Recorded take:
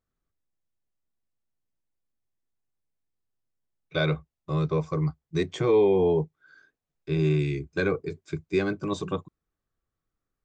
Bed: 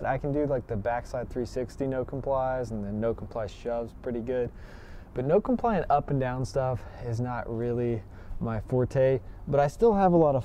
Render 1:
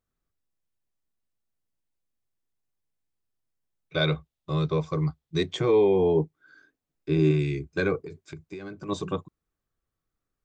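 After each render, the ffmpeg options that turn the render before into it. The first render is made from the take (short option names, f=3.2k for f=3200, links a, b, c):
-filter_complex "[0:a]asettb=1/sr,asplit=3[a][b][c];[a]atrim=end=4.014[d];[b]atrim=start=4.01:end=5.57,asetpts=PTS-STARTPTS,afade=t=in:d=0.004:c=qsin,afade=t=out:st=1.556:d=0.004:c=qsin,equalizer=f=3.6k:w=2.4:g=7[e];[c]atrim=start=5.566[f];[d][e]acrossfade=d=0.004:c1=hsin:c2=qsin[g];[g][f]acrossfade=d=0.004:c1=qsin:c2=hsin,asettb=1/sr,asplit=3[h][i][j];[h]atrim=end=6.154[k];[i]atrim=start=6.15:end=7.31,asetpts=PTS-STARTPTS,afade=t=in:d=0.004:c=qsin,afade=t=out:st=1.156:d=0.004:c=qsin,equalizer=f=290:w=2.5:g=9[l];[j]atrim=start=7.306[m];[k][l]acrossfade=d=0.004:c1=hsin:c2=qsin[n];[n][m]acrossfade=d=0.004:c1=qsin:c2=hsin,asettb=1/sr,asplit=3[o][p][q];[o]atrim=end=7.974[r];[p]atrim=start=7.97:end=8.89,asetpts=PTS-STARTPTS,afade=t=in:d=0.004:c=qsin,afade=t=out:st=0.916:d=0.004:c=qsin,acompressor=threshold=-34dB:ratio=16:attack=3.2:release=140:knee=1:detection=peak[s];[q]atrim=start=8.886[t];[r][s]acrossfade=d=0.004:c1=hsin:c2=qsin[u];[u][t]acrossfade=d=0.004:c1=qsin:c2=hsin"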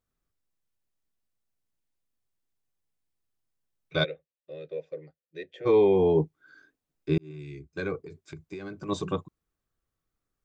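-filter_complex "[0:a]asplit=3[a][b][c];[a]afade=t=out:st=4.03:d=0.02[d];[b]asplit=3[e][f][g];[e]bandpass=f=530:t=q:w=8,volume=0dB[h];[f]bandpass=f=1.84k:t=q:w=8,volume=-6dB[i];[g]bandpass=f=2.48k:t=q:w=8,volume=-9dB[j];[h][i][j]amix=inputs=3:normalize=0,afade=t=in:st=4.03:d=0.02,afade=t=out:st=5.65:d=0.02[k];[c]afade=t=in:st=5.65:d=0.02[l];[d][k][l]amix=inputs=3:normalize=0,asplit=2[m][n];[m]atrim=end=7.18,asetpts=PTS-STARTPTS,afade=t=out:st=7.176:d=0.004:c=hsin[o];[n]atrim=start=7.18,asetpts=PTS-STARTPTS,afade=t=in:d=1.42[p];[o][p]concat=n=2:v=0:a=1"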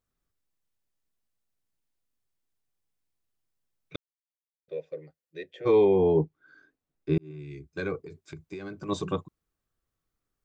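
-filter_complex "[0:a]asettb=1/sr,asplit=3[a][b][c];[a]atrim=end=5.854[d];[b]atrim=start=5.85:end=7.51,asetpts=PTS-STARTPTS,afade=t=in:d=0.004:c=qsin,afade=t=out:st=1.656:d=0.004:c=qsin,highshelf=f=3k:g=-8.5[e];[c]atrim=start=7.506[f];[d][e]acrossfade=d=0.004:c1=hsin:c2=qsin[g];[g][f]acrossfade=d=0.004:c1=qsin:c2=hsin,asplit=3[h][i][j];[h]atrim=end=3.96,asetpts=PTS-STARTPTS,afade=t=out:st=3.956:d=0.004:c=hsin[k];[i]atrim=start=3.96:end=4.68,asetpts=PTS-STARTPTS,volume=0[l];[j]atrim=start=4.68,asetpts=PTS-STARTPTS,afade=t=in:d=0.004:c=hsin[m];[k][l][m]concat=n=3:v=0:a=1"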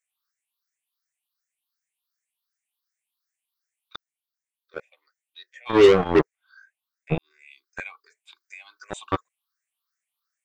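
-filter_complex "[0:a]afftfilt=real='re*pow(10,22/40*sin(2*PI*(0.53*log(max(b,1)*sr/1024/100)/log(2)-(2.7)*(pts-256)/sr)))':imag='im*pow(10,22/40*sin(2*PI*(0.53*log(max(b,1)*sr/1024/100)/log(2)-(2.7)*(pts-256)/sr)))':win_size=1024:overlap=0.75,acrossover=split=1100[a][b];[a]acrusher=bits=2:mix=0:aa=0.5[c];[c][b]amix=inputs=2:normalize=0"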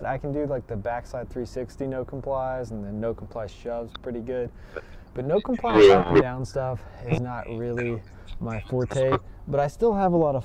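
-filter_complex "[1:a]volume=0dB[a];[0:a][a]amix=inputs=2:normalize=0"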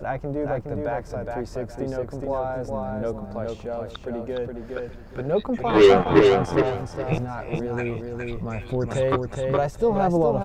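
-af "aecho=1:1:416|832|1248:0.631|0.145|0.0334"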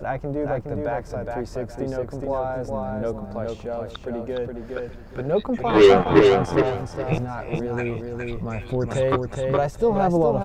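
-af "volume=1dB"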